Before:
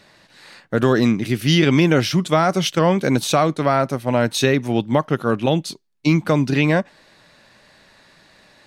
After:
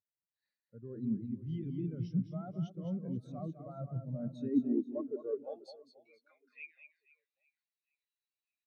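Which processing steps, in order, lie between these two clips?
treble shelf 4.1 kHz +5 dB; reverse; compression 12:1, threshold -27 dBFS, peak gain reduction 17 dB; reverse; high-pass sweep 74 Hz -> 2.6 kHz, 3.57–6.74 s; waveshaping leveller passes 1; reverse bouncing-ball echo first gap 210 ms, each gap 1.3×, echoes 5; on a send at -19 dB: reverberation RT60 0.55 s, pre-delay 77 ms; on the sum: spectral contrast expander 2.5:1; trim -7.5 dB

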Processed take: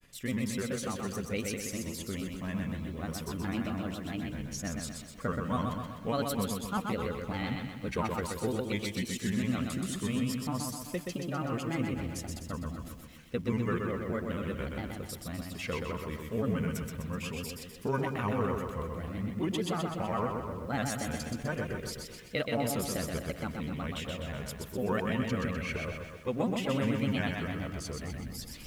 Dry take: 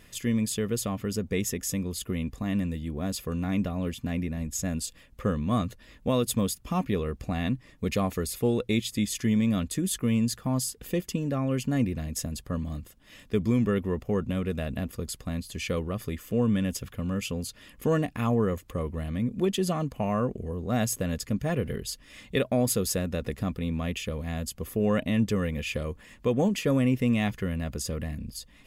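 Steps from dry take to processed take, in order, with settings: dynamic bell 1.4 kHz, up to +8 dB, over -47 dBFS, Q 0.84; reverse; upward compressor, threshold -29 dBFS; reverse; granulator, spray 11 ms, pitch spread up and down by 3 st; repeats whose band climbs or falls 131 ms, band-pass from 2.9 kHz, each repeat -1.4 oct, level -9 dB; bit-crushed delay 126 ms, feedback 55%, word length 9-bit, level -4 dB; trim -7 dB

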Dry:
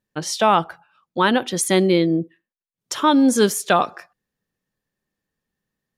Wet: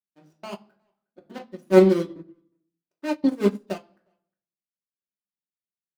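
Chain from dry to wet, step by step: median filter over 41 samples; high-pass 150 Hz; hum notches 60/120/180/240/300/360 Hz; trance gate "xxx.x.xx" 139 bpm -60 dB; speakerphone echo 360 ms, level -23 dB; reverberation RT60 0.60 s, pre-delay 3 ms, DRR -1 dB; upward expansion 2.5:1, over -26 dBFS

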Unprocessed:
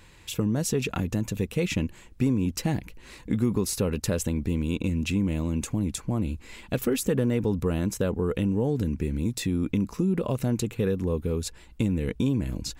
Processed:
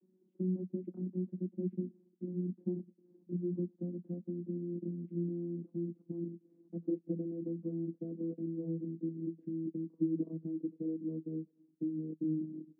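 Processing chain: vocoder on a note that slides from F#3, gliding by -3 st; Butterworth band-pass 280 Hz, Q 2.2

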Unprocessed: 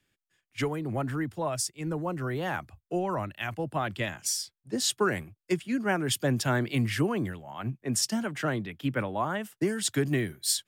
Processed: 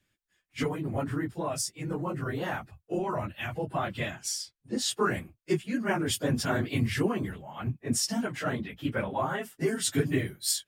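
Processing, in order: phase randomisation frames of 50 ms; 4.15–4.91 s: treble shelf 11 kHz -9 dB; 9.10–10.01 s: comb 7.5 ms, depth 57%; trim -1 dB

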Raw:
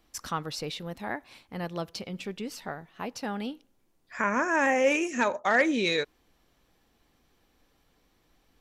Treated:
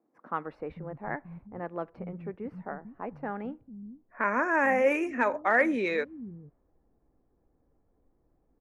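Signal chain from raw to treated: high-order bell 4.8 kHz -15 dB; bands offset in time highs, lows 450 ms, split 190 Hz; level-controlled noise filter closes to 570 Hz, open at -22 dBFS

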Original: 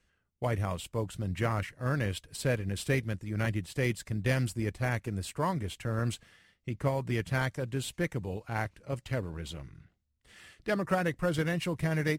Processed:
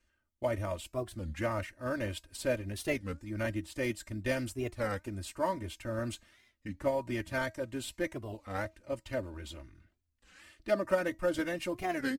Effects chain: comb 3.3 ms, depth 88%; dynamic bell 550 Hz, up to +5 dB, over -42 dBFS, Q 2.8; feedback comb 320 Hz, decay 0.21 s, harmonics all, mix 40%; warped record 33 1/3 rpm, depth 250 cents; trim -1.5 dB

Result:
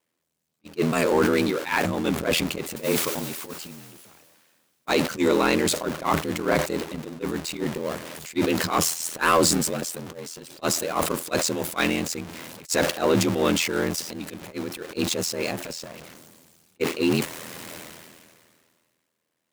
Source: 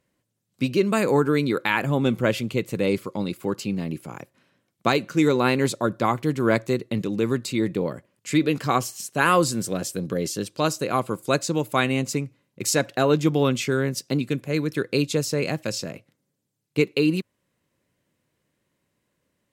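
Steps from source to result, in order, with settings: jump at every zero crossing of -26 dBFS; ring modulator 41 Hz; 2.76–4.89 s: word length cut 6-bit, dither triangular; high-pass 290 Hz 6 dB/octave; transient shaper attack -7 dB, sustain +2 dB; saturation -13 dBFS, distortion -21 dB; gate -26 dBFS, range -46 dB; decay stretcher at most 29 dB/s; trim +4.5 dB

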